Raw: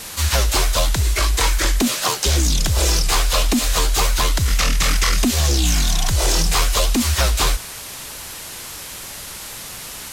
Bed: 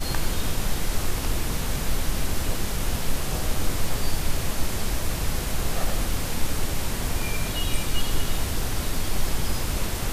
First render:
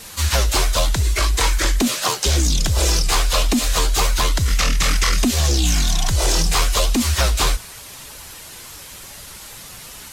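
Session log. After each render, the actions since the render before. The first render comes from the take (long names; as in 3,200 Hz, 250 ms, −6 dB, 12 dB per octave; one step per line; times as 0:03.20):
broadband denoise 6 dB, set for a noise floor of −34 dBFS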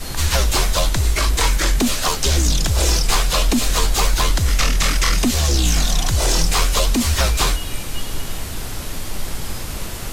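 mix in bed −1.5 dB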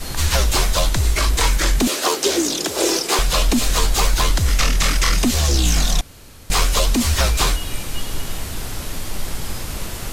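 0:01.87–0:03.19: high-pass with resonance 350 Hz, resonance Q 3.1
0:06.01–0:06.50: fill with room tone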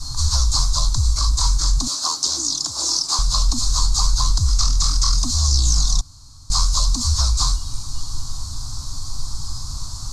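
drawn EQ curve 130 Hz 0 dB, 200 Hz −16 dB, 280 Hz −10 dB, 410 Hz −30 dB, 1,100 Hz −2 dB, 1,900 Hz −27 dB, 2,900 Hz −25 dB, 4,300 Hz +4 dB, 7,000 Hz +2 dB, 14,000 Hz −23 dB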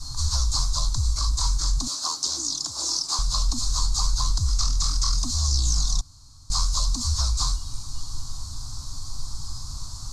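level −5.5 dB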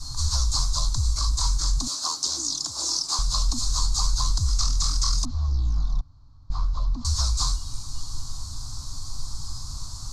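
0:05.25–0:07.05: head-to-tape spacing loss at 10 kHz 43 dB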